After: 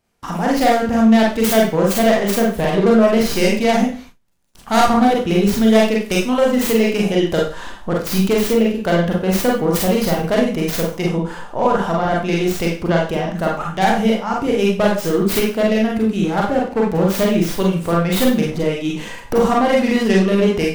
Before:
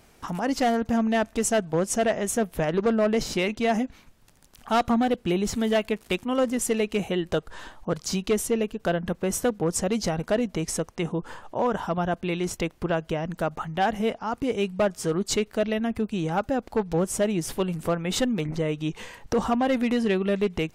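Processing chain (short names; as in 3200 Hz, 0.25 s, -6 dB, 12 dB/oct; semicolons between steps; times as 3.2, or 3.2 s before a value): tracing distortion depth 0.26 ms; 16.23–17.12 backlash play -34.5 dBFS; Schroeder reverb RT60 0.38 s, combs from 32 ms, DRR -2.5 dB; gate with hold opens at -34 dBFS; gain +4.5 dB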